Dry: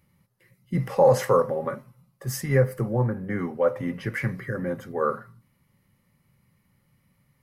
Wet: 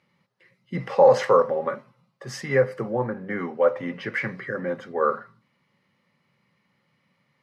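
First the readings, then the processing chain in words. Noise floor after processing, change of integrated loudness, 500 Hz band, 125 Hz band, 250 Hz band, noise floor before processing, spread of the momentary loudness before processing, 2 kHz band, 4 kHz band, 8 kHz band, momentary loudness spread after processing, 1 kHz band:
-71 dBFS, +1.5 dB, +2.5 dB, -8.0 dB, -2.5 dB, -68 dBFS, 12 LU, +3.5 dB, +2.5 dB, n/a, 17 LU, +3.0 dB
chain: Chebyshev band-pass 260–4100 Hz, order 2; bell 290 Hz -6 dB 1 oct; gain +4.5 dB

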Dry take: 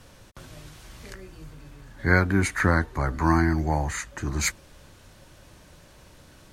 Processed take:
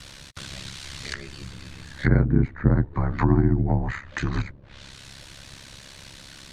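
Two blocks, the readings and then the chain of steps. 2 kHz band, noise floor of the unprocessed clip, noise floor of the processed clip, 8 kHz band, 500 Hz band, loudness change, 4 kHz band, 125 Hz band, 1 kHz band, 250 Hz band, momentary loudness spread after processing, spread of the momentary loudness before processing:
-7.0 dB, -52 dBFS, -46 dBFS, n/a, -1.0 dB, 0.0 dB, +1.5 dB, +4.5 dB, -5.5 dB, +2.0 dB, 22 LU, 21 LU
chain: ring modulator 34 Hz; ten-band EQ 125 Hz +3 dB, 500 Hz -3 dB, 2000 Hz +6 dB, 4000 Hz +11 dB, 8000 Hz +6 dB; treble ducked by the level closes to 460 Hz, closed at -21.5 dBFS; gain +5.5 dB

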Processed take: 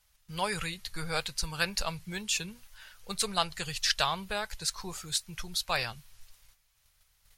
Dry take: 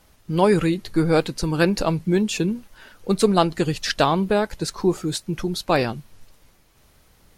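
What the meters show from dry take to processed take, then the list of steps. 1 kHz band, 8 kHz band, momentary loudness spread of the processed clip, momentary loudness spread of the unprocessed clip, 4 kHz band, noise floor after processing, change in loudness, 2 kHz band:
-10.0 dB, -0.5 dB, 12 LU, 8 LU, -1.5 dB, -70 dBFS, -10.5 dB, -5.0 dB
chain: passive tone stack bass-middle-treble 10-0-10; gate -58 dBFS, range -8 dB

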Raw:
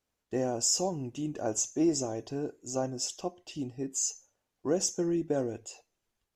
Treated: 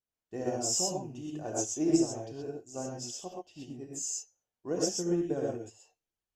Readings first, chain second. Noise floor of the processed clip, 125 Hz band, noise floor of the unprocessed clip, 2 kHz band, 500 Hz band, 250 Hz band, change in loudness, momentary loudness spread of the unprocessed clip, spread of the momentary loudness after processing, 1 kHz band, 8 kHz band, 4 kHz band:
under -85 dBFS, -2.0 dB, -85 dBFS, -3.0 dB, -1.5 dB, -0.5 dB, -1.0 dB, 12 LU, 17 LU, -2.0 dB, -2.5 dB, -2.0 dB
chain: vibrato 1.6 Hz 31 cents; non-linear reverb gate 0.15 s rising, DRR -2 dB; upward expander 1.5:1, over -44 dBFS; gain -2 dB

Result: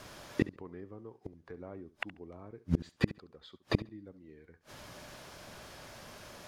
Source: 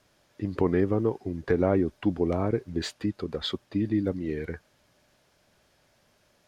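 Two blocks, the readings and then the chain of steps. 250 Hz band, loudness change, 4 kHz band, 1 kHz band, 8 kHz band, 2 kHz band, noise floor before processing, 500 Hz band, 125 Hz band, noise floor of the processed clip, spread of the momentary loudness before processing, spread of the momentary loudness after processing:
-11.0 dB, -11.5 dB, -9.5 dB, -11.0 dB, -4.5 dB, -3.0 dB, -67 dBFS, -15.5 dB, -7.0 dB, -69 dBFS, 11 LU, 18 LU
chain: bell 1100 Hz +4 dB 0.56 oct; flipped gate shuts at -28 dBFS, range -38 dB; on a send: flutter echo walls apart 11.9 m, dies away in 0.25 s; on the sum: gain +15 dB

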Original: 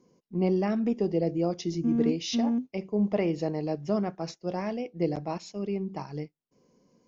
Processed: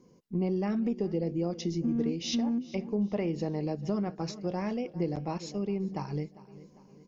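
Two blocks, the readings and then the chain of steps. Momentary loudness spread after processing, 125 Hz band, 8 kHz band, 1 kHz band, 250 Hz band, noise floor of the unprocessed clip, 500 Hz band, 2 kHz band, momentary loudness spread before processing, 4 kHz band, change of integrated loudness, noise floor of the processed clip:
6 LU, -0.5 dB, n/a, -3.5 dB, -2.5 dB, -76 dBFS, -4.0 dB, -3.5 dB, 9 LU, -1.0 dB, -3.0 dB, -59 dBFS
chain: low shelf 150 Hz +7.5 dB; notch 660 Hz, Q 12; on a send: feedback echo 0.4 s, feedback 49%, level -21 dB; on the sum: compressor 2.5:1, threshold -32 dBFS, peak gain reduction 9.5 dB; gain +2 dB

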